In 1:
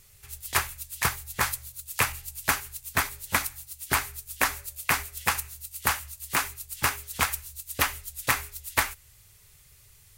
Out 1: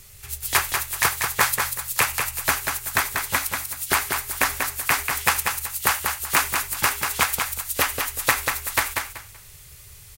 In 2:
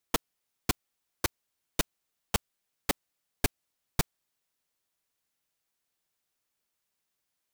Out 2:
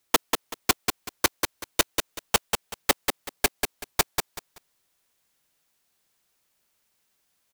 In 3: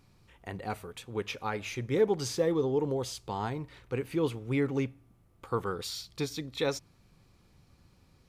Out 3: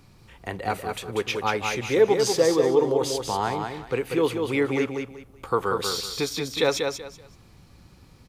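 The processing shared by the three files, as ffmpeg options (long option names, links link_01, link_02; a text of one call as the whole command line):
ffmpeg -i in.wav -filter_complex "[0:a]acrossover=split=320[link_01][link_02];[link_01]acompressor=threshold=-46dB:ratio=4[link_03];[link_02]alimiter=limit=-13.5dB:level=0:latency=1:release=356[link_04];[link_03][link_04]amix=inputs=2:normalize=0,aecho=1:1:190|380|570:0.562|0.135|0.0324,volume=9dB" out.wav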